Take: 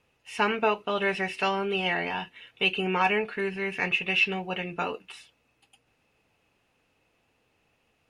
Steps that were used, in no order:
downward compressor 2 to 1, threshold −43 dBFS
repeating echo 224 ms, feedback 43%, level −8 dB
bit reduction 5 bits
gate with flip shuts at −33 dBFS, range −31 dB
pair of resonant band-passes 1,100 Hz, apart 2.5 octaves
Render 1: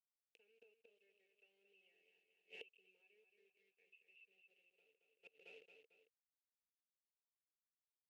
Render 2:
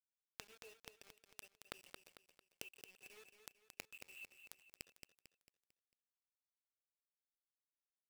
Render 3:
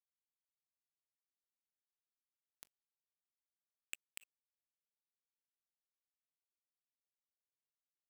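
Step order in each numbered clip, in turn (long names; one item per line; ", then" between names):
bit reduction, then repeating echo, then downward compressor, then gate with flip, then pair of resonant band-passes
pair of resonant band-passes, then bit reduction, then gate with flip, then repeating echo, then downward compressor
repeating echo, then downward compressor, then pair of resonant band-passes, then bit reduction, then gate with flip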